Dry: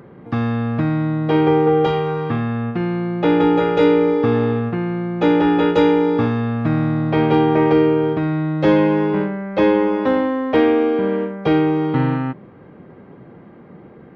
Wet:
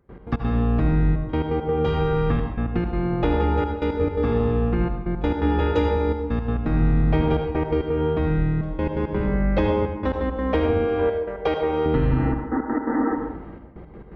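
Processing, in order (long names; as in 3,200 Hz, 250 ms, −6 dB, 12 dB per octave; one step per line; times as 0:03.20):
sub-octave generator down 2 octaves, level +1 dB
0:10.87–0:11.86: low shelf with overshoot 330 Hz −12 dB, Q 1.5
0:12.13–0:13.12: healed spectral selection 220–2,000 Hz before
downward compressor, threshold −19 dBFS, peak gain reduction 10.5 dB
gate pattern ".x.x.xxxxxxxx." 169 BPM −24 dB
on a send: convolution reverb RT60 0.90 s, pre-delay 71 ms, DRR 4.5 dB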